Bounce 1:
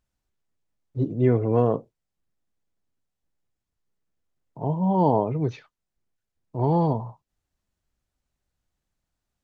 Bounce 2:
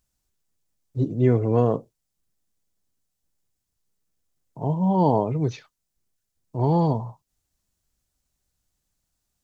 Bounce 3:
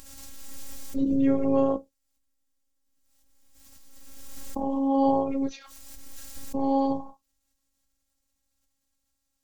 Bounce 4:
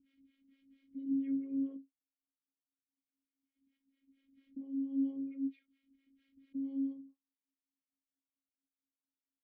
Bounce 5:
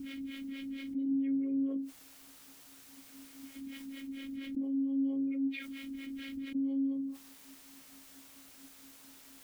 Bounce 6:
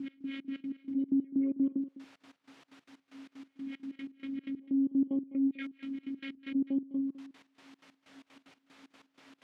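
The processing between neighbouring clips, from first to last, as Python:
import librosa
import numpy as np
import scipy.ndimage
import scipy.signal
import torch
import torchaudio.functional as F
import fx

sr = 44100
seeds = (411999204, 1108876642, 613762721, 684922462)

y1 = fx.bass_treble(x, sr, bass_db=2, treble_db=11)
y2 = fx.robotise(y1, sr, hz=272.0)
y2 = fx.pre_swell(y2, sr, db_per_s=25.0)
y3 = fx.harmonic_tremolo(y2, sr, hz=4.4, depth_pct=100, crossover_hz=420.0)
y3 = fx.vowel_filter(y3, sr, vowel='i')
y3 = fx.air_absorb(y3, sr, metres=370.0)
y3 = y3 * librosa.db_to_amplitude(-4.0)
y4 = fx.env_flatten(y3, sr, amount_pct=70)
y5 = fx.step_gate(y4, sr, bpm=188, pattern='x..xx.x.x..xx.', floor_db=-24.0, edge_ms=4.5)
y5 = fx.bandpass_edges(y5, sr, low_hz=150.0, high_hz=2900.0)
y5 = y5 + 10.0 ** (-16.0 / 20.0) * np.pad(y5, (int(205 * sr / 1000.0), 0))[:len(y5)]
y5 = y5 * librosa.db_to_amplitude(4.5)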